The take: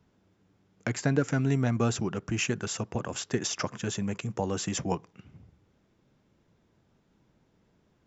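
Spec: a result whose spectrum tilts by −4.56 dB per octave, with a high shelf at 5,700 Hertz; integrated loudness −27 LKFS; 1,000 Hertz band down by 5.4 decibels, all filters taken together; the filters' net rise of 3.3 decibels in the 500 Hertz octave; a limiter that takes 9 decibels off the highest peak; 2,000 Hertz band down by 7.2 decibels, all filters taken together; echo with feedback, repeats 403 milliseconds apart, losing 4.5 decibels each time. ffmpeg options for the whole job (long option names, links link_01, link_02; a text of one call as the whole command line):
ffmpeg -i in.wav -af "equalizer=frequency=500:width_type=o:gain=6,equalizer=frequency=1000:width_type=o:gain=-8.5,equalizer=frequency=2000:width_type=o:gain=-9,highshelf=frequency=5700:gain=8,alimiter=limit=-19dB:level=0:latency=1,aecho=1:1:403|806|1209|1612|2015|2418|2821|3224|3627:0.596|0.357|0.214|0.129|0.0772|0.0463|0.0278|0.0167|0.01,volume=2.5dB" out.wav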